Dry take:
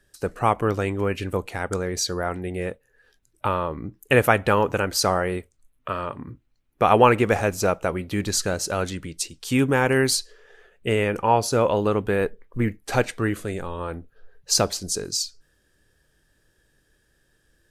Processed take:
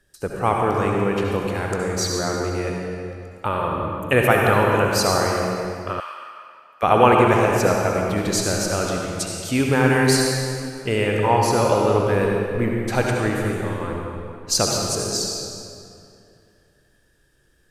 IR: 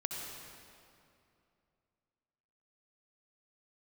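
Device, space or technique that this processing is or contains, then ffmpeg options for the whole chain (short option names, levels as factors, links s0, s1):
stairwell: -filter_complex "[1:a]atrim=start_sample=2205[s0];[0:a][s0]afir=irnorm=-1:irlink=0,asettb=1/sr,asplit=3[s1][s2][s3];[s1]atrim=end=6.004[s4];[s2]atrim=start=6:end=6.83,asetpts=PTS-STARTPTS,afade=t=in:d=0.004:c=qsin,afade=t=out:st=0.826:d=0.004:c=qsin,highpass=1400[s5];[s3]atrim=start=6.826[s6];[s4][s5]acrossfade=d=0.004:c1=hsin:c2=qsin[s7];[s7][s6]acrossfade=d=0.004:c1=qsin:c2=hsin,volume=1.12"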